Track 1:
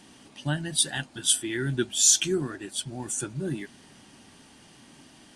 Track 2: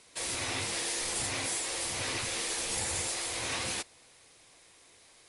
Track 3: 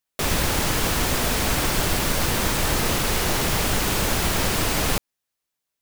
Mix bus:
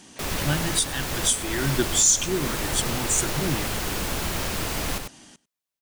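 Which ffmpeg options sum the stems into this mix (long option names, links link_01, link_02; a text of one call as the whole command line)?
ffmpeg -i stem1.wav -i stem2.wav -i stem3.wav -filter_complex "[0:a]equalizer=frequency=6700:width_type=o:width=0.6:gain=8.5,asoftclip=type=hard:threshold=-4dB,volume=2.5dB,asplit=2[link_01][link_02];[link_02]volume=-21.5dB[link_03];[1:a]lowpass=3200,volume=-5dB[link_04];[2:a]volume=-6.5dB,asplit=2[link_05][link_06];[link_06]volume=-6.5dB[link_07];[link_03][link_07]amix=inputs=2:normalize=0,aecho=0:1:97:1[link_08];[link_01][link_04][link_05][link_08]amix=inputs=4:normalize=0,alimiter=limit=-9.5dB:level=0:latency=1:release=365" out.wav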